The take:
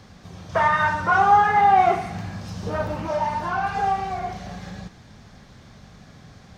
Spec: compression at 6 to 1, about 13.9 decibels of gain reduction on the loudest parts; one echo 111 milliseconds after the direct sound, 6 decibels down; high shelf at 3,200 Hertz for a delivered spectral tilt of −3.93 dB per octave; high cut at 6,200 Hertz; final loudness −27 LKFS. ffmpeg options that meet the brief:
ffmpeg -i in.wav -af "lowpass=6200,highshelf=frequency=3200:gain=7,acompressor=threshold=-27dB:ratio=6,aecho=1:1:111:0.501,volume=3dB" out.wav

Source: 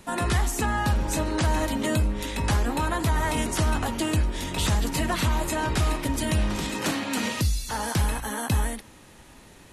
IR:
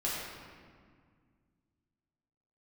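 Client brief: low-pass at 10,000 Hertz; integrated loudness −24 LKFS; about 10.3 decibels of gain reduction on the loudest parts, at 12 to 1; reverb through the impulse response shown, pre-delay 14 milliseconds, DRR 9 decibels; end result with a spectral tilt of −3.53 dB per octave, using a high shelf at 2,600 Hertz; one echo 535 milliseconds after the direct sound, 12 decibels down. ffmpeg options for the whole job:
-filter_complex "[0:a]lowpass=10000,highshelf=frequency=2600:gain=6,acompressor=threshold=-29dB:ratio=12,aecho=1:1:535:0.251,asplit=2[link_01][link_02];[1:a]atrim=start_sample=2205,adelay=14[link_03];[link_02][link_03]afir=irnorm=-1:irlink=0,volume=-15.5dB[link_04];[link_01][link_04]amix=inputs=2:normalize=0,volume=8.5dB"

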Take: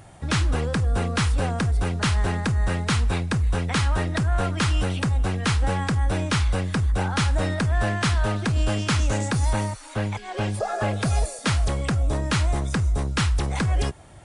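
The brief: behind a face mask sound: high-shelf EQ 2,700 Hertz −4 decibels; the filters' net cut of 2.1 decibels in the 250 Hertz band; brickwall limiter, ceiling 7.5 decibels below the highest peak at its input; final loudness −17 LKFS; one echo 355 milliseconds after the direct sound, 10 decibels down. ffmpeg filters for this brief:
ffmpeg -i in.wav -af "equalizer=frequency=250:width_type=o:gain=-3,alimiter=limit=-19.5dB:level=0:latency=1,highshelf=frequency=2700:gain=-4,aecho=1:1:355:0.316,volume=10.5dB" out.wav

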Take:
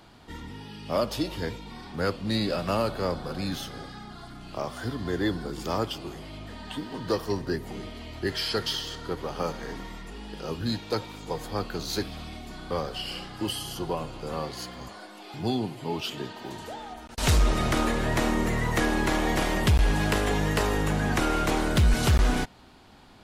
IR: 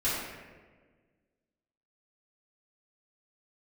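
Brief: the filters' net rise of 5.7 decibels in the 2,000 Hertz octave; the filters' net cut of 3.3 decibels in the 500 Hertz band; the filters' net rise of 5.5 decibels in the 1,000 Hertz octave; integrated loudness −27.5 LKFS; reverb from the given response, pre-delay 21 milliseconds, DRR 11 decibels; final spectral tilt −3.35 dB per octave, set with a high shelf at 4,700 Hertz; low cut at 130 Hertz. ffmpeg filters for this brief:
-filter_complex "[0:a]highpass=130,equalizer=frequency=500:width_type=o:gain=-6.5,equalizer=frequency=1000:width_type=o:gain=7.5,equalizer=frequency=2000:width_type=o:gain=4,highshelf=frequency=4700:gain=6,asplit=2[link_01][link_02];[1:a]atrim=start_sample=2205,adelay=21[link_03];[link_02][link_03]afir=irnorm=-1:irlink=0,volume=-20.5dB[link_04];[link_01][link_04]amix=inputs=2:normalize=0,volume=-0.5dB"

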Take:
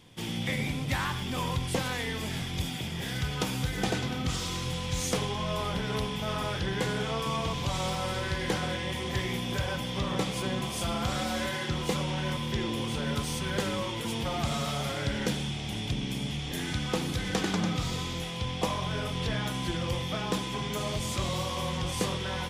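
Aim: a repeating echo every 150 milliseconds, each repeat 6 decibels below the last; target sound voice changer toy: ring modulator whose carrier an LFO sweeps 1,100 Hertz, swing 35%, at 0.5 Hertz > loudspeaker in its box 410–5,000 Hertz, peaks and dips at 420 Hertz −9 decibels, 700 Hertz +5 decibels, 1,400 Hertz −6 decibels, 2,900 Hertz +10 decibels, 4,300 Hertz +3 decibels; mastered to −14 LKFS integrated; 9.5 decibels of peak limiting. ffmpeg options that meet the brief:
ffmpeg -i in.wav -af "alimiter=limit=-24dB:level=0:latency=1,aecho=1:1:150|300|450|600|750|900:0.501|0.251|0.125|0.0626|0.0313|0.0157,aeval=exprs='val(0)*sin(2*PI*1100*n/s+1100*0.35/0.5*sin(2*PI*0.5*n/s))':channel_layout=same,highpass=410,equalizer=frequency=420:width_type=q:width=4:gain=-9,equalizer=frequency=700:width_type=q:width=4:gain=5,equalizer=frequency=1400:width_type=q:width=4:gain=-6,equalizer=frequency=2900:width_type=q:width=4:gain=10,equalizer=frequency=4300:width_type=q:width=4:gain=3,lowpass=frequency=5000:width=0.5412,lowpass=frequency=5000:width=1.3066,volume=19.5dB" out.wav

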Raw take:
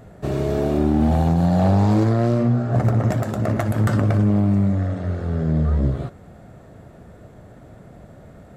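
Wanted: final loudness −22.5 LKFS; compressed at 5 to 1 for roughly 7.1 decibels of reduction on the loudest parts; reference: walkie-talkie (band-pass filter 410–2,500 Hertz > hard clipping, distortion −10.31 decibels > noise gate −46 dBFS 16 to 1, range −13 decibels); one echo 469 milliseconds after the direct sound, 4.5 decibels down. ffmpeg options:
ffmpeg -i in.wav -af "acompressor=threshold=-22dB:ratio=5,highpass=410,lowpass=2500,aecho=1:1:469:0.596,asoftclip=type=hard:threshold=-30dB,agate=range=-13dB:threshold=-46dB:ratio=16,volume=13dB" out.wav

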